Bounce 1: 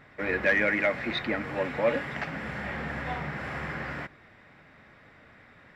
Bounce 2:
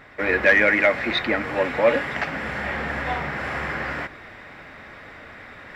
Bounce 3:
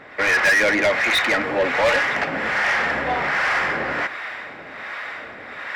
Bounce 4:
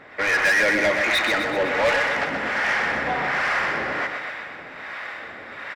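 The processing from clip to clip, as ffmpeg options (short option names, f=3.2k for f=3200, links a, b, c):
-af "equalizer=f=150:t=o:w=1.4:g=-7,areverse,acompressor=mode=upward:threshold=-42dB:ratio=2.5,areverse,volume=8dB"
-filter_complex "[0:a]acrossover=split=630[a][b];[a]aeval=exprs='val(0)*(1-0.7/2+0.7/2*cos(2*PI*1.3*n/s))':c=same[c];[b]aeval=exprs='val(0)*(1-0.7/2-0.7/2*cos(2*PI*1.3*n/s))':c=same[d];[c][d]amix=inputs=2:normalize=0,asplit=2[e][f];[f]highpass=f=720:p=1,volume=24dB,asoftclip=type=tanh:threshold=-5.5dB[g];[e][g]amix=inputs=2:normalize=0,lowpass=f=4.9k:p=1,volume=-6dB,volume=-4dB"
-af "aecho=1:1:126|252|378|504|630|756|882:0.447|0.246|0.135|0.0743|0.0409|0.0225|0.0124,volume=-3dB"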